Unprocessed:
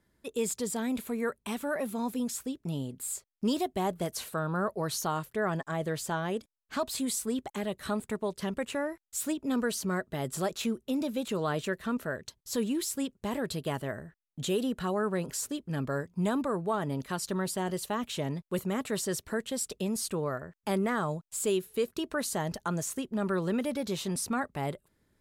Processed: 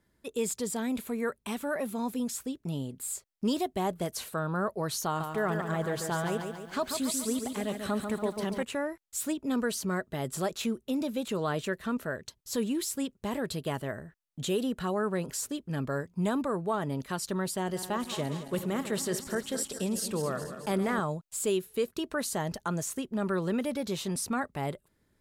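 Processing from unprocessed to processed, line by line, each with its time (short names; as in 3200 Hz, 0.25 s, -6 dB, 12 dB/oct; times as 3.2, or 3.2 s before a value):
5.06–8.63 lo-fi delay 0.141 s, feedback 55%, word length 10-bit, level -6 dB
17.61–21 regenerating reverse delay 0.109 s, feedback 75%, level -11 dB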